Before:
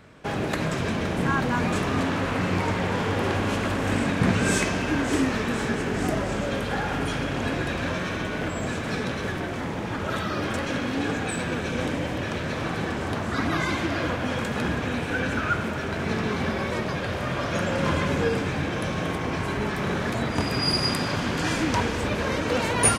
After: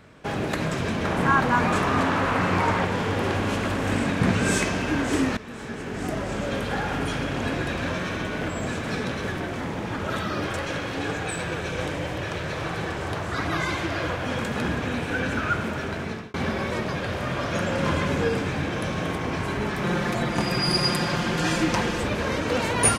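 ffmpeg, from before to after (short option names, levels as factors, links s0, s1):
-filter_complex "[0:a]asettb=1/sr,asplit=3[s0][s1][s2];[s0]atrim=end=1.044[s3];[s1]atrim=start=1.04:end=2.85,asetpts=PTS-STARTPTS,afade=t=in:d=0.004:c=qsin,afade=t=out:st=1.806:d=0.004:c=qsin,equalizer=f=1100:t=o:w=1.6:g=7[s4];[s2]atrim=start=2.846[s5];[s3][s4]acrossfade=d=0.004:c1=hsin:c2=qsin[s6];[s6][s5]acrossfade=d=0.004:c1=qsin:c2=hsin,asettb=1/sr,asplit=3[s7][s8][s9];[s7]atrim=end=10.464[s10];[s8]atrim=start=10.46:end=14.27,asetpts=PTS-STARTPTS,afade=t=in:d=0.004:c=qsin,afade=t=out:st=3.806:d=0.004:c=qsin,equalizer=f=240:t=o:w=0.3:g=-14.5[s11];[s9]atrim=start=14.266[s12];[s10][s11]acrossfade=d=0.004:c1=hsin:c2=qsin[s13];[s13][s12]acrossfade=d=0.004:c1=qsin:c2=hsin,asettb=1/sr,asplit=3[s14][s15][s16];[s14]atrim=end=19.844[s17];[s15]atrim=start=19.84:end=22.03,asetpts=PTS-STARTPTS,afade=t=in:d=0.004:c=qsin,afade=t=out:st=2.186:d=0.004:c=qsin,aecho=1:1:5.7:0.65,atrim=end_sample=96579[s18];[s16]atrim=start=22.026[s19];[s17][s18]acrossfade=d=0.004:c1=hsin:c2=qsin[s20];[s20][s19]acrossfade=d=0.004:c1=qsin:c2=hsin,asplit=3[s21][s22][s23];[s21]atrim=end=5.37,asetpts=PTS-STARTPTS,afade=t=out:st=5.366:d=0.004:c=hsin:silence=0.16788[s24];[s22]atrim=start=5.37:end=16.34,asetpts=PTS-STARTPTS,afade=t=in:d=1.2:silence=0.16788,afade=t=out:st=10.36:d=0.61:c=qsin[s25];[s23]atrim=start=16.34,asetpts=PTS-STARTPTS,afade=t=in:d=0.004:c=hsin[s26];[s24][s25][s26]concat=n=3:v=0:a=1"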